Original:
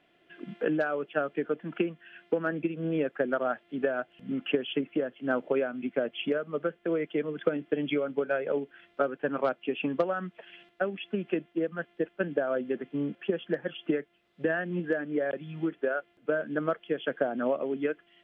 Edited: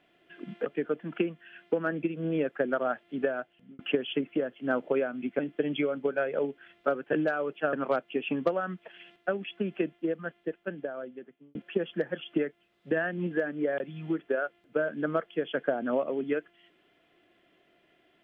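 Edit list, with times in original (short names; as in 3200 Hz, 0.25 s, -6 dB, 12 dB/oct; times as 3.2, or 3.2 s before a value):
0.66–1.26 move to 9.26
3.84–4.39 fade out
5.99–7.52 cut
11.49–13.08 fade out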